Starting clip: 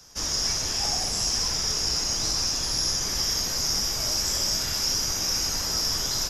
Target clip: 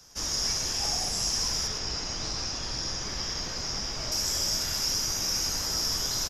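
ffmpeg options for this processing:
ffmpeg -i in.wav -filter_complex "[0:a]asettb=1/sr,asplit=3[link_01][link_02][link_03];[link_01]atrim=end=1.674[link_04];[link_02]atrim=start=1.67:end=4.12,asetpts=PTS-STARTPTS,afade=type=in:duration=0.004:curve=qsin,afade=type=out:start_time=2.446:duration=0.004:curve=qsin,lowpass=4500[link_05];[link_03]atrim=start=4.116[link_06];[link_04][link_05]acrossfade=duration=0.004:curve1=hsin:curve2=qsin[link_07];[link_07][link_06]acrossfade=duration=0.004:curve1=qsin:curve2=hsin,aecho=1:1:109:0.316,volume=-3dB" out.wav

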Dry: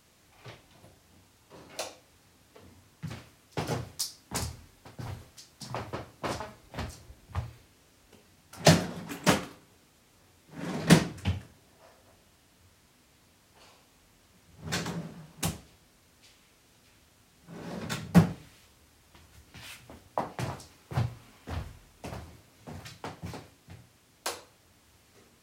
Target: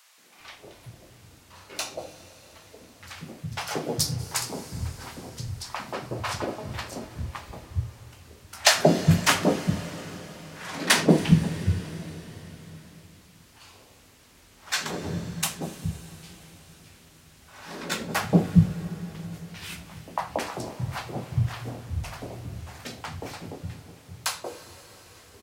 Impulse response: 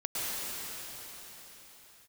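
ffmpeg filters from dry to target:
-filter_complex "[0:a]acrossover=split=190|750[link_01][link_02][link_03];[link_02]adelay=180[link_04];[link_01]adelay=400[link_05];[link_05][link_04][link_03]amix=inputs=3:normalize=0,asplit=2[link_06][link_07];[1:a]atrim=start_sample=2205,adelay=80[link_08];[link_07][link_08]afir=irnorm=-1:irlink=0,volume=-21dB[link_09];[link_06][link_09]amix=inputs=2:normalize=0,volume=7dB"

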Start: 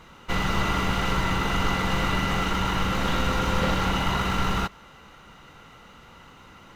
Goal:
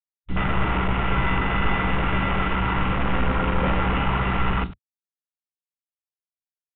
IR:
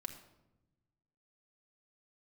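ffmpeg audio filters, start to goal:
-af "aresample=16000,acrusher=bits=4:mix=0:aa=0.000001,aresample=44100,aecho=1:1:16|61:0.447|0.422,acontrast=79,afwtdn=0.112,aresample=8000,aresample=44100,areverse,acompressor=mode=upward:threshold=-37dB:ratio=2.5,areverse,volume=-5.5dB"

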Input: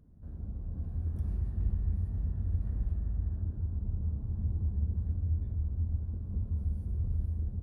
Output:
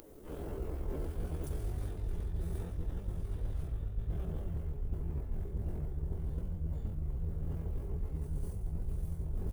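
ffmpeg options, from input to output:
ffmpeg -i in.wav -filter_complex "[0:a]aecho=1:1:497|994|1491|1988:0.2|0.0938|0.0441|0.0207,atempo=0.8,asubboost=boost=9:cutoff=52,asplit=4[link_01][link_02][link_03][link_04];[link_02]asetrate=29433,aresample=44100,atempo=1.49831,volume=-8dB[link_05];[link_03]asetrate=37084,aresample=44100,atempo=1.18921,volume=-5dB[link_06];[link_04]asetrate=88200,aresample=44100,atempo=0.5,volume=-4dB[link_07];[link_01][link_05][link_06][link_07]amix=inputs=4:normalize=0,crystalizer=i=5:c=0,areverse,acompressor=threshold=-28dB:ratio=10,areverse,lowshelf=frequency=250:width_type=q:width=1.5:gain=-13.5,volume=10dB" out.wav

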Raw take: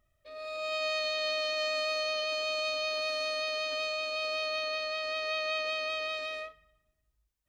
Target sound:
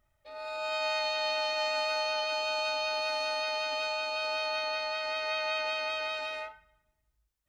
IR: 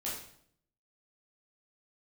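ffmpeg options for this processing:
-filter_complex "[0:a]asplit=2[link_01][link_02];[link_02]highpass=frequency=540:width_type=q:width=0.5412,highpass=frequency=540:width_type=q:width=1.307,lowpass=frequency=2100:width_type=q:width=0.5176,lowpass=frequency=2100:width_type=q:width=0.7071,lowpass=frequency=2100:width_type=q:width=1.932,afreqshift=250[link_03];[1:a]atrim=start_sample=2205,atrim=end_sample=4410,highshelf=frequency=2100:gain=-11.5[link_04];[link_03][link_04]afir=irnorm=-1:irlink=0,volume=-3.5dB[link_05];[link_01][link_05]amix=inputs=2:normalize=0"

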